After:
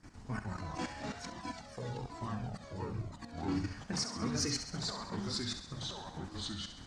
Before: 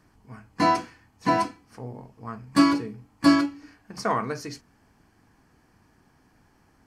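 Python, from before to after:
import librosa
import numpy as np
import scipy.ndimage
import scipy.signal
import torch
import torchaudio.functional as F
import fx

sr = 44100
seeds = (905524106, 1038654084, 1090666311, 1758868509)

y = fx.spec_quant(x, sr, step_db=15)
y = fx.low_shelf(y, sr, hz=77.0, db=5.5)
y = fx.level_steps(y, sr, step_db=15)
y = y + 10.0 ** (-24.0 / 20.0) * np.pad(y, (int(832 * sr / 1000.0), 0))[:len(y)]
y = fx.over_compress(y, sr, threshold_db=-39.0, ratio=-0.5)
y = fx.echo_pitch(y, sr, ms=100, semitones=-3, count=2, db_per_echo=-3.0)
y = scipy.signal.sosfilt(scipy.signal.butter(4, 7900.0, 'lowpass', fs=sr, output='sos'), y)
y = fx.high_shelf(y, sr, hz=6000.0, db=9.5)
y = fx.echo_thinned(y, sr, ms=67, feedback_pct=63, hz=880.0, wet_db=-8.5)
y = fx.comb_cascade(y, sr, direction='falling', hz=1.1, at=(1.3, 3.38))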